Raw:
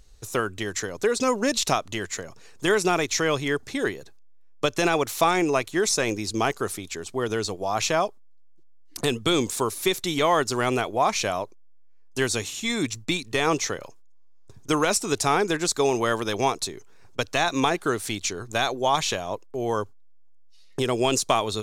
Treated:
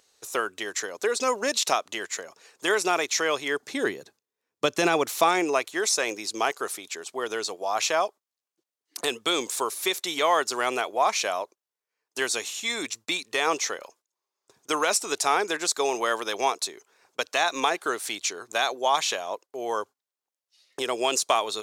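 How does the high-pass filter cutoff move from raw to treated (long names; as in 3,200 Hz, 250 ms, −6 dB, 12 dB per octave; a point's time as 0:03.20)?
0:03.48 450 Hz
0:03.89 200 Hz
0:04.90 200 Hz
0:05.76 490 Hz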